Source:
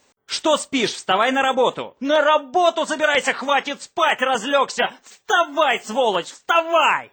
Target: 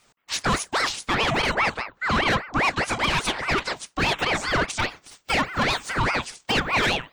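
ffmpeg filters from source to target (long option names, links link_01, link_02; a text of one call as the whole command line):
ffmpeg -i in.wav -filter_complex "[0:a]acrossover=split=110[link_01][link_02];[link_02]asoftclip=type=tanh:threshold=-16.5dB[link_03];[link_01][link_03]amix=inputs=2:normalize=0,aeval=exprs='val(0)*sin(2*PI*1100*n/s+1100*0.65/4.9*sin(2*PI*4.9*n/s))':channel_layout=same,volume=2dB" out.wav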